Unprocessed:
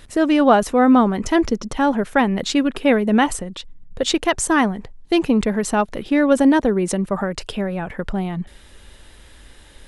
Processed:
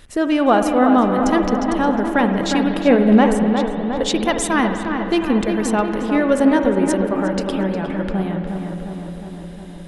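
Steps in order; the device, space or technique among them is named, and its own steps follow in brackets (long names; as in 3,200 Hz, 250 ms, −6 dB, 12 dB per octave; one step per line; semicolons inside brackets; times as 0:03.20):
0:02.87–0:03.48: tilt shelving filter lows +5 dB, about 1,200 Hz
dub delay into a spring reverb (feedback echo with a low-pass in the loop 358 ms, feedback 69%, low-pass 2,200 Hz, level −6 dB; spring reverb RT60 3.3 s, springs 52 ms, chirp 60 ms, DRR 6.5 dB)
level −1.5 dB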